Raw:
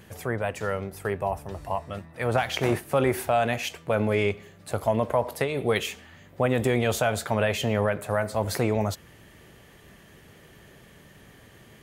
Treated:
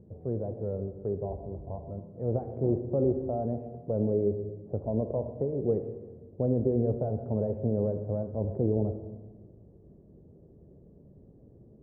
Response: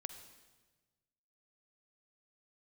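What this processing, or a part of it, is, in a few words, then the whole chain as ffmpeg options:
next room: -filter_complex "[0:a]lowpass=f=510:w=0.5412,lowpass=f=510:w=1.3066[a];[1:a]atrim=start_sample=2205[b];[a][b]afir=irnorm=-1:irlink=0,volume=2dB"

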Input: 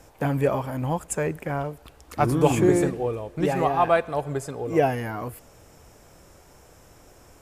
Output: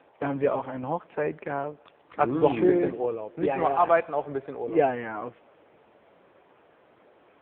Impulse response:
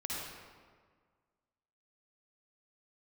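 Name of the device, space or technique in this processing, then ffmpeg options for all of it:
telephone: -filter_complex "[0:a]asplit=3[a][b][c];[a]afade=t=out:st=0.74:d=0.02[d];[b]lowpass=11k,afade=t=in:st=0.74:d=0.02,afade=t=out:st=1.61:d=0.02[e];[c]afade=t=in:st=1.61:d=0.02[f];[d][e][f]amix=inputs=3:normalize=0,highpass=260,lowpass=3.6k" -ar 8000 -c:a libopencore_amrnb -b:a 6700

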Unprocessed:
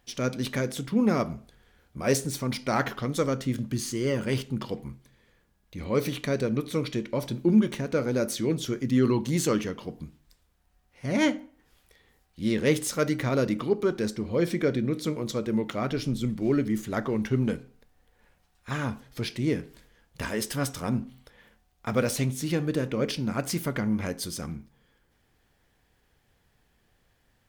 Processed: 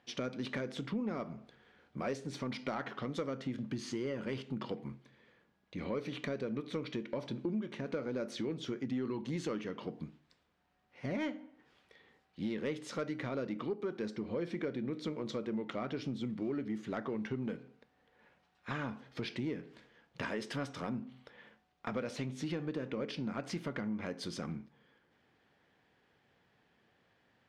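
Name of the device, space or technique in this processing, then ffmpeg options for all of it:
AM radio: -af "highpass=160,lowpass=3.6k,acompressor=threshold=-34dB:ratio=5,asoftclip=type=tanh:threshold=-24.5dB"

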